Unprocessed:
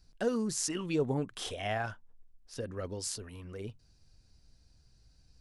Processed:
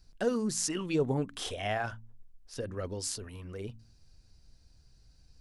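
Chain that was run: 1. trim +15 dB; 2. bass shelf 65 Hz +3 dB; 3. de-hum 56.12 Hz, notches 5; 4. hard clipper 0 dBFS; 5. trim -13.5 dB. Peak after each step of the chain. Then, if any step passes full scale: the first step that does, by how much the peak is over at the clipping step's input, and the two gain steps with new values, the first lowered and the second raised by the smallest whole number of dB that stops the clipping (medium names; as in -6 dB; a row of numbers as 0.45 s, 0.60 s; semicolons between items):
-1.5 dBFS, -1.5 dBFS, -1.5 dBFS, -1.5 dBFS, -15.0 dBFS; nothing clips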